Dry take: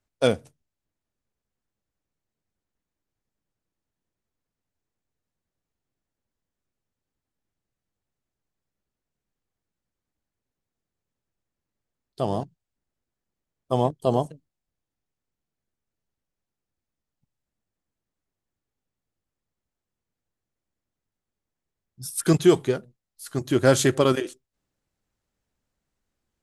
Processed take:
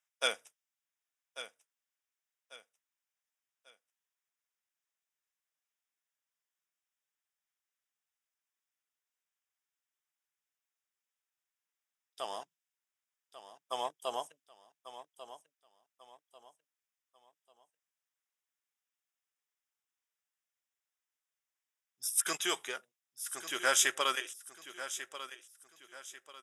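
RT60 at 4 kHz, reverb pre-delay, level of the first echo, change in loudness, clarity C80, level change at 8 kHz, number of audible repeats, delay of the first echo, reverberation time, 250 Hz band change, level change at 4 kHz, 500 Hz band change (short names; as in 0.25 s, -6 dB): none, none, -13.0 dB, -11.0 dB, none, 0.0 dB, 3, 1.143 s, none, -25.5 dB, -1.0 dB, -18.0 dB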